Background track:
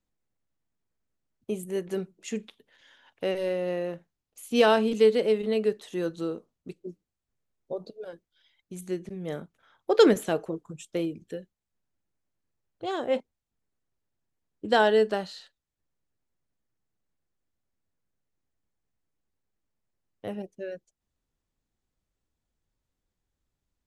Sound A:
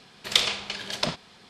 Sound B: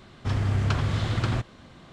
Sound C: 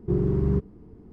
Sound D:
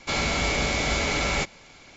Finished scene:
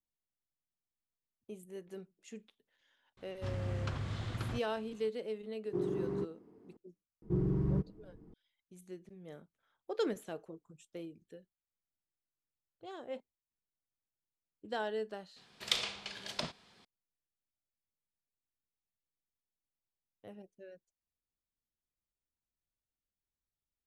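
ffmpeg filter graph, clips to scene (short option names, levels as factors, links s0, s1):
-filter_complex "[3:a]asplit=2[s0][s1];[0:a]volume=0.158[s2];[s0]highpass=290[s3];[s1]aecho=1:1:6.3:0.4[s4];[2:a]atrim=end=1.92,asetpts=PTS-STARTPTS,volume=0.224,afade=t=in:d=0.004:c=hsin,afade=t=out:st=1.916:d=0.004:c=hsin,adelay=139797S[s5];[s3]atrim=end=1.12,asetpts=PTS-STARTPTS,volume=0.501,afade=t=in:d=0.004:c=hsin,afade=t=out:st=1.116:d=0.004:c=hsin,adelay=249165S[s6];[s4]atrim=end=1.12,asetpts=PTS-STARTPTS,volume=0.355,afade=t=in:d=0.004:c=hsin,afade=t=out:st=1.116:d=0.004:c=hsin,adelay=318402S[s7];[1:a]atrim=end=1.49,asetpts=PTS-STARTPTS,volume=0.282,afade=t=in:d=0.004:c=hsin,afade=t=out:st=1.486:d=0.004:c=hsin,adelay=15360[s8];[s2][s5][s6][s7][s8]amix=inputs=5:normalize=0"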